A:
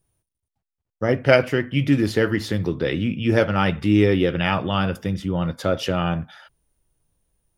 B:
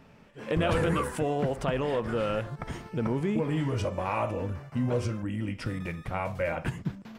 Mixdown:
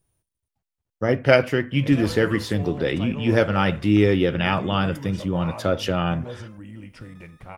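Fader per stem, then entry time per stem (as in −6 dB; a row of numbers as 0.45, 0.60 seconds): −0.5, −7.5 decibels; 0.00, 1.35 seconds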